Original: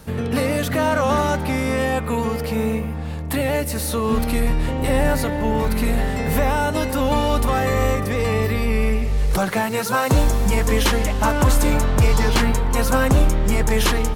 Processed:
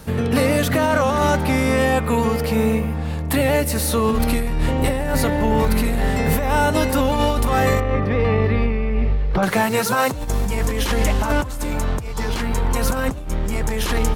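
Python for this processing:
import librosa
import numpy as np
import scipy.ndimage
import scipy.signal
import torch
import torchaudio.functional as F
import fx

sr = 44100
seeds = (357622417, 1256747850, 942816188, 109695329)

y = fx.over_compress(x, sr, threshold_db=-19.0, ratio=-0.5)
y = fx.air_absorb(y, sr, metres=310.0, at=(7.8, 9.43))
y = F.gain(torch.from_numpy(y), 1.5).numpy()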